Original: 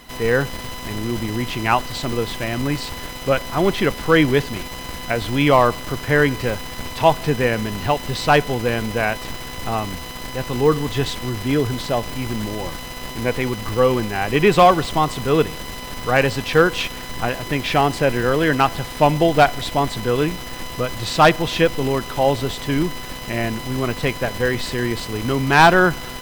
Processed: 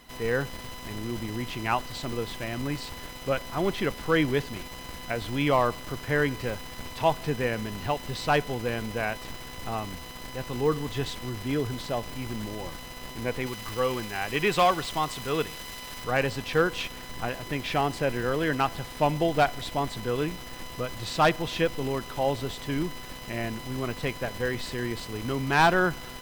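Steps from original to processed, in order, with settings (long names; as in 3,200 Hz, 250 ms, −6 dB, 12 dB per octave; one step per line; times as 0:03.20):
0:13.46–0:16.04: tilt shelving filter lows −4 dB, about 940 Hz
level −9 dB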